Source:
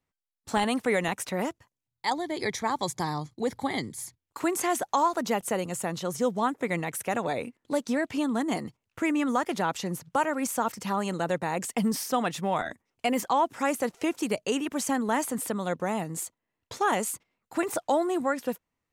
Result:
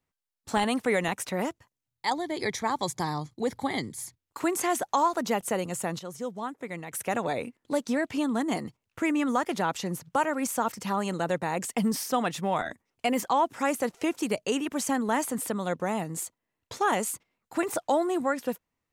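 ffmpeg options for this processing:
-filter_complex "[0:a]asplit=3[a][b][c];[a]atrim=end=5.992[d];[b]atrim=start=5.988:end=6.922,asetpts=PTS-STARTPTS,volume=-8dB[e];[c]atrim=start=6.918[f];[d][e]acrossfade=d=0.004:c1=hsin:c2=hsin[g];[g][f]acrossfade=d=0.004:c1=hsin:c2=hsin"

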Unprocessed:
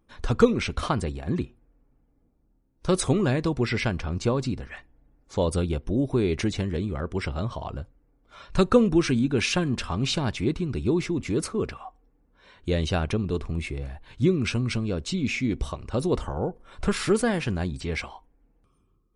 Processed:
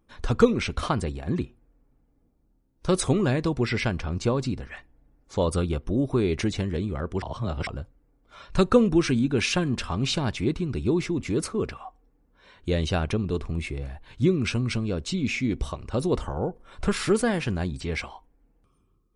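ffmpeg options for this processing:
-filter_complex "[0:a]asettb=1/sr,asplit=3[a][b][c];[a]atrim=end=5.404[d];[b]atrim=start=5.4:end=6.21,asetpts=PTS-STARTPTS,afade=t=in:d=0.004:c=qsin,afade=t=out:st=0.806:d=0.004:c=qsin,equalizer=f=1.2k:t=o:w=0.32:g=7[e];[c]atrim=start=6.206[f];[d][e]acrossfade=d=0.004:c1=hsin:c2=qsin[g];[g][f]acrossfade=d=0.004:c1=qsin:c2=hsin,asplit=3[h][i][j];[h]atrim=end=7.222[k];[i]atrim=start=7.218:end=7.672,asetpts=PTS-STARTPTS,areverse[l];[j]atrim=start=7.668[m];[k][l]acrossfade=d=0.004:c1=hsin:c2=hsin[n];[n][m]acrossfade=d=0.004:c1=hsin:c2=hsin"

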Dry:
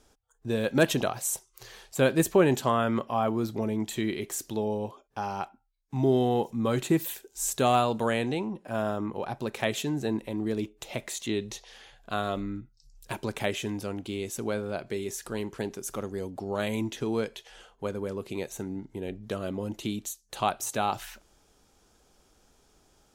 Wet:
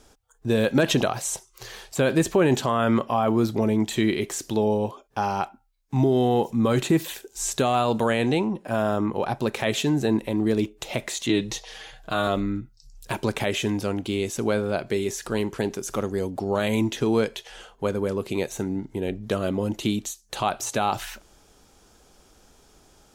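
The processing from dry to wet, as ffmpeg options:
-filter_complex "[0:a]asettb=1/sr,asplit=3[a][b][c];[a]atrim=end=11.284[d];[b]atrim=start=11.28:end=12.27,asetpts=PTS-STARTPTS,afade=t=in:d=0.004:c=qsin,afade=t=out:st=0.986:d=0.004:c=qsin,aecho=1:1:6.4:0.65,atrim=end_sample=43659[e];[c]atrim=start=12.266[f];[d][e]acrossfade=d=0.004:c1=hsin:c2=qsin[g];[g][f]acrossfade=d=0.004:c1=qsin:c2=hsin,acrossover=split=7200[h][i];[i]acompressor=threshold=-47dB:ratio=4:attack=1:release=60[j];[h][j]amix=inputs=2:normalize=0,alimiter=limit=-18.5dB:level=0:latency=1:release=53,volume=7.5dB"

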